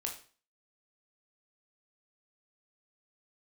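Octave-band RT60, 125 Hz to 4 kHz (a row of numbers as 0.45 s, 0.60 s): 0.45 s, 0.45 s, 0.40 s, 0.40 s, 0.40 s, 0.40 s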